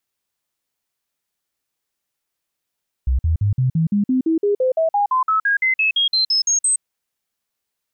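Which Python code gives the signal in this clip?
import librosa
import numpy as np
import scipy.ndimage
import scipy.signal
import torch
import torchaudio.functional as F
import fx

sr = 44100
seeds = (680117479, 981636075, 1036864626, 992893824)

y = fx.stepped_sweep(sr, from_hz=64.3, direction='up', per_octave=3, tones=22, dwell_s=0.12, gap_s=0.05, level_db=-14.0)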